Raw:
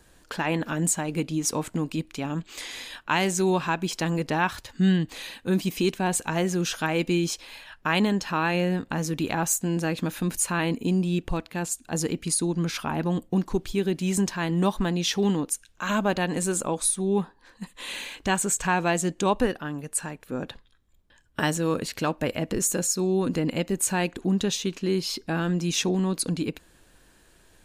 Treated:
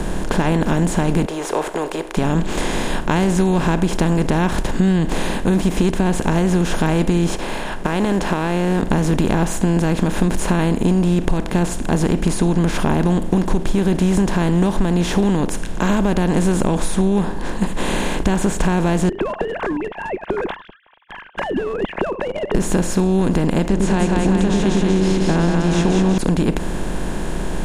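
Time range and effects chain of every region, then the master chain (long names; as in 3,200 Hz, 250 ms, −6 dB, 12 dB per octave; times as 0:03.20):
0:01.25–0:02.17: elliptic high-pass filter 420 Hz, stop band 50 dB + parametric band 6,400 Hz −9.5 dB 2.7 octaves
0:07.35–0:08.83: one scale factor per block 7 bits + bass and treble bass −15 dB, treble −6 dB + downward compressor, threshold −29 dBFS
0:19.09–0:22.55: three sine waves on the formant tracks + noise gate with hold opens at −51 dBFS, closes at −57 dBFS + downward compressor, threshold −33 dBFS
0:23.68–0:26.18: low-pass filter 7,300 Hz 24 dB per octave + mains-hum notches 60/120/180/240/300/360/420/480/540/600 Hz + echo with a time of its own for lows and highs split 490 Hz, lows 100 ms, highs 189 ms, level −3.5 dB
whole clip: compressor on every frequency bin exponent 0.4; spectral tilt −3 dB per octave; downward compressor, threshold −13 dBFS; level +1 dB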